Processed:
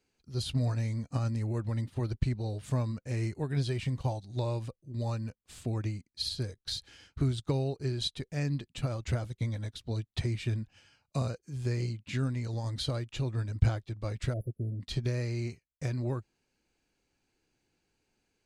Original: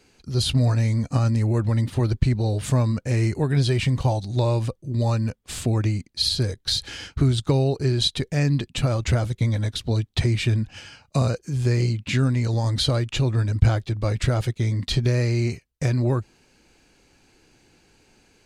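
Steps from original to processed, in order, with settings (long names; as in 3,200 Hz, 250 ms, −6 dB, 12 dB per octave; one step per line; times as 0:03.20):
time-frequency box erased 0:14.33–0:14.81, 700–9,800 Hz
expander for the loud parts 1.5 to 1, over −37 dBFS
level −7 dB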